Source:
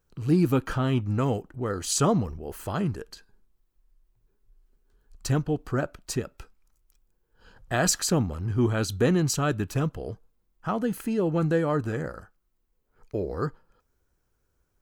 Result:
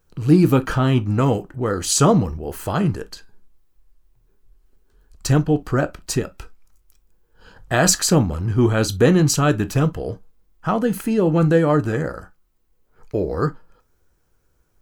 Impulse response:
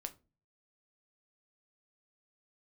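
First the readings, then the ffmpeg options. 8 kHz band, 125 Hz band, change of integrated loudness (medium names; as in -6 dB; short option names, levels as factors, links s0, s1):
+7.5 dB, +8.0 dB, +7.5 dB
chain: -filter_complex "[0:a]asplit=2[s0][s1];[1:a]atrim=start_sample=2205,atrim=end_sample=3087[s2];[s1][s2]afir=irnorm=-1:irlink=0,volume=2.51[s3];[s0][s3]amix=inputs=2:normalize=0,volume=0.891"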